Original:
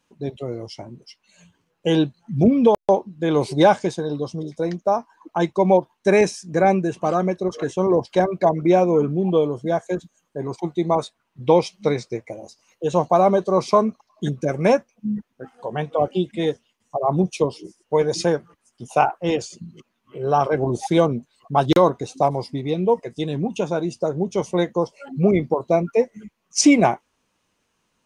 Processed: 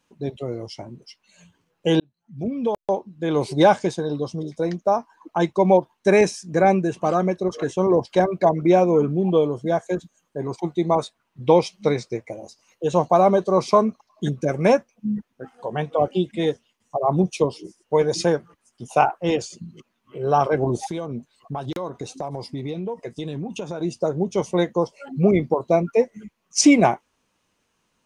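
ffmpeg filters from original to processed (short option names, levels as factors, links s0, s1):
-filter_complex "[0:a]asettb=1/sr,asplit=3[s0][s1][s2];[s0]atrim=end=20.774[s3];[s1]atrim=start=20.77:end=23.81,asetpts=PTS-STARTPTS,afade=t=in:d=0.004:c=qsin,afade=t=out:st=3.036:d=0.004:c=qsin,acompressor=threshold=0.0562:ratio=8:attack=3.2:release=140:knee=1:detection=peak[s4];[s2]atrim=start=23.806[s5];[s3][s4]acrossfade=d=0.004:c1=hsin:c2=qsin[s6];[s6][s5]acrossfade=d=0.004:c1=qsin:c2=hsin,asplit=2[s7][s8];[s7]atrim=end=2,asetpts=PTS-STARTPTS,afade=t=out:st=1.996:d=0.004:c=hsin[s9];[s8]atrim=start=2,asetpts=PTS-STARTPTS,afade=t=in:d=1.76[s10];[s9][s10]concat=n=2:v=0:a=1"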